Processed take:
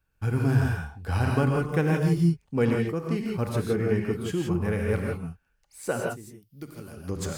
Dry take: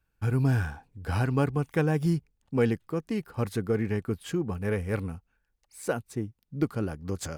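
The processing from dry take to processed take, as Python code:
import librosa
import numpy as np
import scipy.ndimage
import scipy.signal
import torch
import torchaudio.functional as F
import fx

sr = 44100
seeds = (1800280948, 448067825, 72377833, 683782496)

y = fx.pre_emphasis(x, sr, coefficient=0.8, at=(6.09, 6.97))
y = fx.rev_gated(y, sr, seeds[0], gate_ms=190, shape='rising', drr_db=0.0)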